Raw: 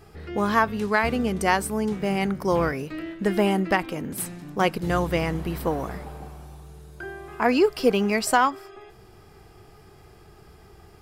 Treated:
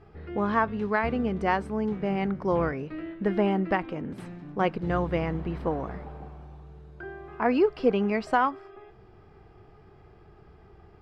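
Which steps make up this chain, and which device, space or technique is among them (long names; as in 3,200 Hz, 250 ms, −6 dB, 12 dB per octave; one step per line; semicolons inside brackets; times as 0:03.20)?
phone in a pocket (low-pass filter 3,600 Hz 12 dB per octave; high-shelf EQ 2,500 Hz −9 dB)
level −2.5 dB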